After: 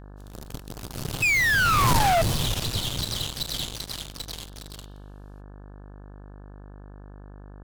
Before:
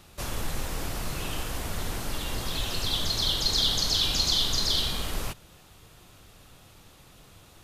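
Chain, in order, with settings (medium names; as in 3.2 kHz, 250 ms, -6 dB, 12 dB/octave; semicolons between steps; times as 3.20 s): Doppler pass-by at 1.93 s, 24 m/s, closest 1.3 m; painted sound fall, 1.22–2.22 s, 640–2600 Hz -34 dBFS; graphic EQ 125/2000/4000 Hz +12/-8/+3 dB; in parallel at -9 dB: fuzz box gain 51 dB, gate -51 dBFS; on the sum: mains buzz 50 Hz, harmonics 35, -45 dBFS -6 dB/octave; trim +1.5 dB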